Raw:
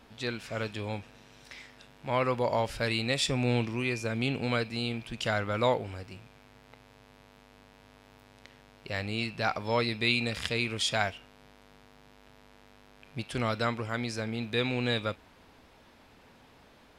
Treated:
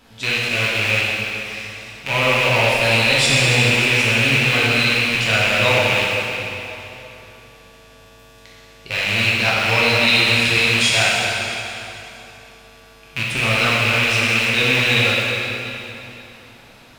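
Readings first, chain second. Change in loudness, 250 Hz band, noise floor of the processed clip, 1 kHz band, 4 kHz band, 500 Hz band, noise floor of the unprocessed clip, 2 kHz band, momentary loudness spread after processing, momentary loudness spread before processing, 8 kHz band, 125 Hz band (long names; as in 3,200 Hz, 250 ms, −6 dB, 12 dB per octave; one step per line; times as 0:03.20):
+15.0 dB, +7.5 dB, −46 dBFS, +10.5 dB, +17.0 dB, +9.5 dB, −58 dBFS, +19.5 dB, 15 LU, 15 LU, +17.0 dB, +11.5 dB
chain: loose part that buzzes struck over −39 dBFS, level −16 dBFS
high-shelf EQ 3,000 Hz +7.5 dB
dense smooth reverb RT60 3.1 s, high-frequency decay 0.9×, DRR −7 dB
level +1.5 dB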